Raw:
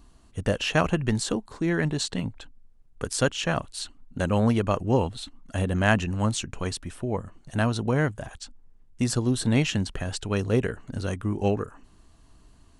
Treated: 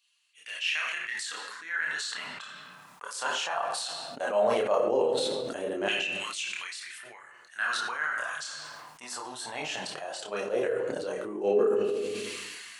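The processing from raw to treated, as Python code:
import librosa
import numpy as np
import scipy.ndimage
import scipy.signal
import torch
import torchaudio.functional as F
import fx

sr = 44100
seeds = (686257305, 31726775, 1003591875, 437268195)

y = fx.chorus_voices(x, sr, voices=6, hz=0.19, base_ms=29, depth_ms=4.6, mix_pct=50)
y = fx.filter_lfo_highpass(y, sr, shape='saw_down', hz=0.17, low_hz=370.0, high_hz=2800.0, q=3.6)
y = fx.room_shoebox(y, sr, seeds[0], volume_m3=230.0, walls='mixed', distance_m=0.41)
y = fx.sustainer(y, sr, db_per_s=22.0)
y = y * librosa.db_to_amplitude(-5.0)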